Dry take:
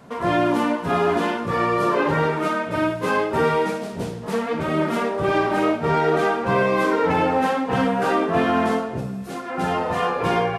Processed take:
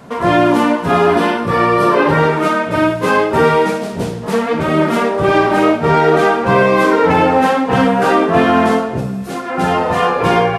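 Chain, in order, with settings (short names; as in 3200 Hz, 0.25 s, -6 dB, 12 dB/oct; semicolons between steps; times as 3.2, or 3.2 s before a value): 1.07–2.17 notch 6800 Hz, Q 6.8; gain +8 dB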